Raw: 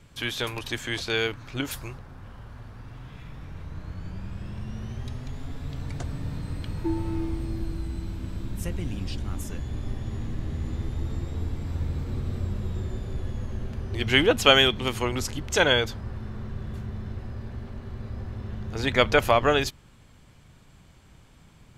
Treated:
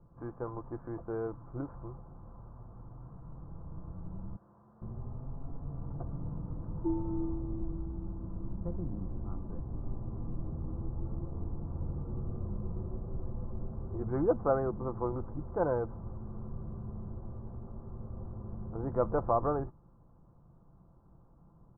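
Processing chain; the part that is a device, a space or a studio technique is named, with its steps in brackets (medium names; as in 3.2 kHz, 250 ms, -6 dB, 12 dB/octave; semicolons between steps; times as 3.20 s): parallel distortion (in parallel at -8 dB: hard clipper -21.5 dBFS, distortion -7 dB); 4.36–4.82 s: on the sum: high-pass 1.5 kHz 6 dB/octave; steep low-pass 1.2 kHz 48 dB/octave; comb 5.9 ms, depth 35%; trim -9 dB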